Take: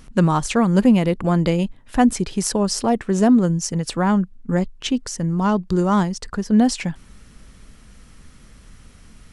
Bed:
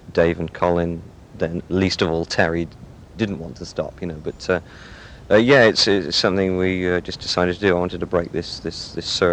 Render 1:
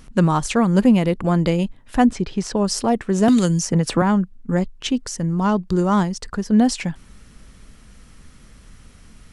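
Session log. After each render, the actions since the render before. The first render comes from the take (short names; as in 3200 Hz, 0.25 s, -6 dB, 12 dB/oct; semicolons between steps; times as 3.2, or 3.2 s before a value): 2.06–2.57 air absorption 110 m; 3.28–4.02 three-band squash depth 100%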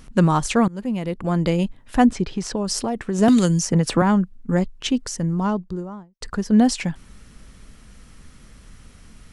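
0.68–1.65 fade in, from -23 dB; 2.33–3.19 compressor, threshold -19 dBFS; 5.07–6.21 studio fade out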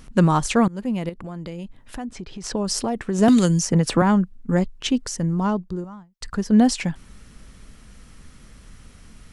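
1.09–2.44 compressor 3:1, threshold -34 dBFS; 5.84–6.35 bell 430 Hz -12.5 dB 1.4 oct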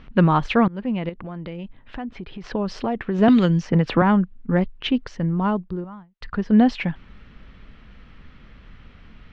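LPF 3400 Hz 24 dB/oct; bell 2500 Hz +2.5 dB 2.6 oct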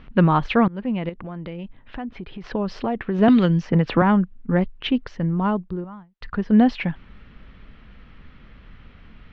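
LPF 4600 Hz 12 dB/oct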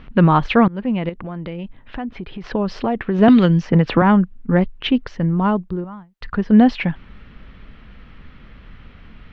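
gain +4 dB; limiter -2 dBFS, peak gain reduction 2.5 dB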